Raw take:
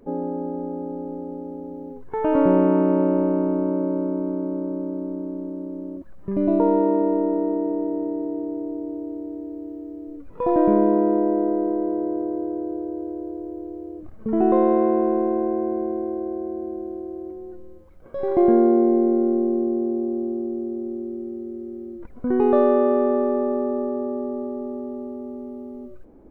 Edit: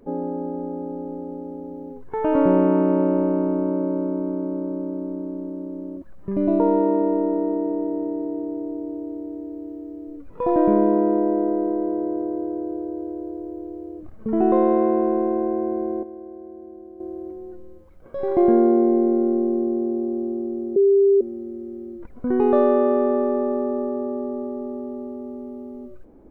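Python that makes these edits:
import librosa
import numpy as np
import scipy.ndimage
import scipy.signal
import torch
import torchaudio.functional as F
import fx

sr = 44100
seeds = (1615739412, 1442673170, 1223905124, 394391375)

y = fx.edit(x, sr, fx.clip_gain(start_s=16.03, length_s=0.97, db=-10.0),
    fx.bleep(start_s=20.76, length_s=0.45, hz=396.0, db=-12.0), tone=tone)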